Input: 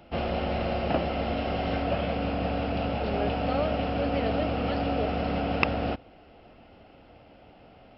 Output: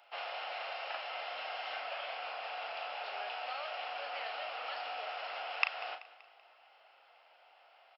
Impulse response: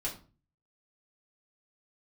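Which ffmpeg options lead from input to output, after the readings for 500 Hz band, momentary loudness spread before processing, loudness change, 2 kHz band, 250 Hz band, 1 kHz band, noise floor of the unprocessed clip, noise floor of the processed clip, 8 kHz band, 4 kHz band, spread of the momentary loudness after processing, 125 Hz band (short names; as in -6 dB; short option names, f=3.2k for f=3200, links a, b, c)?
-16.5 dB, 2 LU, -11.0 dB, -4.0 dB, under -40 dB, -8.5 dB, -54 dBFS, -64 dBFS, n/a, -3.5 dB, 6 LU, under -40 dB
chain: -filter_complex "[0:a]highpass=f=780:w=0.5412,highpass=f=780:w=1.3066,acrossover=split=1400[a][b];[a]acompressor=threshold=-37dB:ratio=6[c];[c][b]amix=inputs=2:normalize=0,asplit=2[d][e];[e]adelay=37,volume=-8dB[f];[d][f]amix=inputs=2:normalize=0,aecho=1:1:191|382|573|764:0.126|0.0617|0.0302|0.0148,volume=-4dB"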